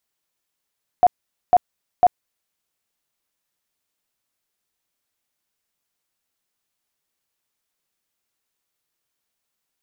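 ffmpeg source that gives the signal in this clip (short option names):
-f lavfi -i "aevalsrc='0.376*sin(2*PI*718*mod(t,0.5))*lt(mod(t,0.5),27/718)':d=1.5:s=44100"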